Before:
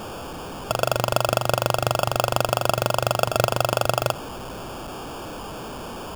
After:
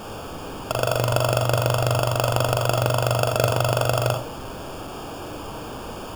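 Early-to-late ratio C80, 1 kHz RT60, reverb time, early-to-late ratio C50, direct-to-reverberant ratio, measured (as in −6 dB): 13.5 dB, 0.35 s, 0.45 s, 7.0 dB, 3.0 dB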